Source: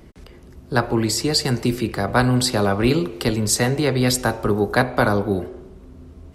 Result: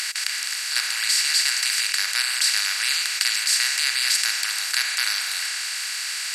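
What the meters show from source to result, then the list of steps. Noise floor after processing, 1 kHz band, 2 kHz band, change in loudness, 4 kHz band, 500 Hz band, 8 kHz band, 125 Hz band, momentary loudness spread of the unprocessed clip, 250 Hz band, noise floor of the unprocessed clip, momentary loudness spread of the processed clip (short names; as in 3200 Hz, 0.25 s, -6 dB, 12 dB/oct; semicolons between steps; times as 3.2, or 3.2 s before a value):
-29 dBFS, -12.0 dB, +3.0 dB, -0.5 dB, +7.0 dB, under -30 dB, +5.5 dB, under -40 dB, 5 LU, under -40 dB, -44 dBFS, 6 LU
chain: per-bin compression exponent 0.2; ladder high-pass 1900 Hz, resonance 40%; gain +1.5 dB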